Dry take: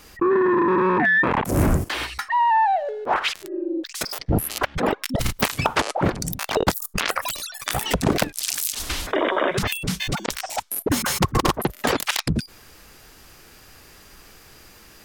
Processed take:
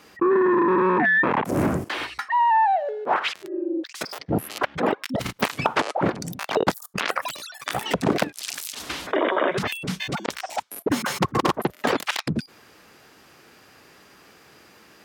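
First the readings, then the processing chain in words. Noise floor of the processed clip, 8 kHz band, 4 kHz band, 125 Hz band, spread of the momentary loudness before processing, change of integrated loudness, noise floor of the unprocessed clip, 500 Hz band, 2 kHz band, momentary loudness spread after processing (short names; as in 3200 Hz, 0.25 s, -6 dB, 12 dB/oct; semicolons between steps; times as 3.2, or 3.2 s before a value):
-53 dBFS, -8.0 dB, -4.0 dB, -5.5 dB, 9 LU, -1.5 dB, -49 dBFS, 0.0 dB, -1.0 dB, 12 LU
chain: HPF 160 Hz 12 dB/oct; high shelf 5200 Hz -11.5 dB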